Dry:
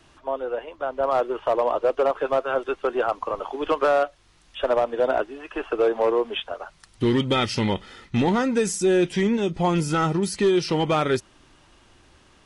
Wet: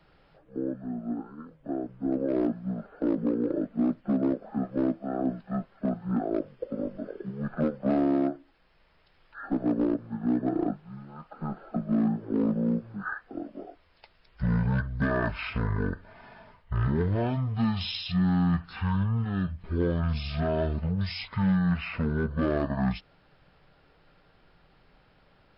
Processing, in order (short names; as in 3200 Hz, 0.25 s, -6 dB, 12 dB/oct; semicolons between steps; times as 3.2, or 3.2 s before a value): wide varispeed 0.487×; gain -5.5 dB